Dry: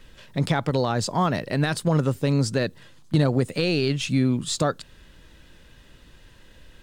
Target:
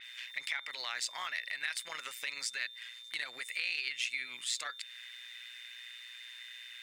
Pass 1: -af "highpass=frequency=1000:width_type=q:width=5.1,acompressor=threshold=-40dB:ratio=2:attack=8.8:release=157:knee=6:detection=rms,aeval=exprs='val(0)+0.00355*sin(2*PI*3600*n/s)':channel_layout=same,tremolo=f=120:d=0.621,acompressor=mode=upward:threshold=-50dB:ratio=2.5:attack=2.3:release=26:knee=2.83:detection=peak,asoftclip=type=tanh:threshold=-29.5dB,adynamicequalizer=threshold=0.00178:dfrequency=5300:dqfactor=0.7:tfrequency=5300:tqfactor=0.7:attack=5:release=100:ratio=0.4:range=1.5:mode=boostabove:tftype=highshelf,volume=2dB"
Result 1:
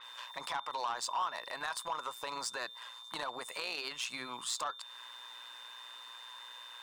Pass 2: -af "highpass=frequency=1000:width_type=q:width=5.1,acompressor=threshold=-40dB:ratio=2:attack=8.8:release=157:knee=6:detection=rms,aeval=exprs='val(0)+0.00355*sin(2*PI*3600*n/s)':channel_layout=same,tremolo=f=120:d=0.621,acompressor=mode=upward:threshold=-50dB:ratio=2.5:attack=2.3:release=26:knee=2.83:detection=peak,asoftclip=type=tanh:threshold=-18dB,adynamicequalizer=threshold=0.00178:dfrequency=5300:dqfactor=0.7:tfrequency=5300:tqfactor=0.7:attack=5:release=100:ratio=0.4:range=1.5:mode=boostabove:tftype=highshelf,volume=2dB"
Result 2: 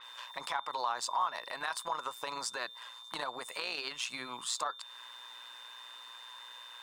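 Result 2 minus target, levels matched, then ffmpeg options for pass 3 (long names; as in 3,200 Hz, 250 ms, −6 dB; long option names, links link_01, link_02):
1,000 Hz band +13.0 dB
-af "highpass=frequency=2100:width_type=q:width=5.1,acompressor=threshold=-40dB:ratio=2:attack=8.8:release=157:knee=6:detection=rms,aeval=exprs='val(0)+0.00355*sin(2*PI*3600*n/s)':channel_layout=same,tremolo=f=120:d=0.621,acompressor=mode=upward:threshold=-50dB:ratio=2.5:attack=2.3:release=26:knee=2.83:detection=peak,asoftclip=type=tanh:threshold=-18dB,adynamicequalizer=threshold=0.00178:dfrequency=5300:dqfactor=0.7:tfrequency=5300:tqfactor=0.7:attack=5:release=100:ratio=0.4:range=1.5:mode=boostabove:tftype=highshelf,volume=2dB"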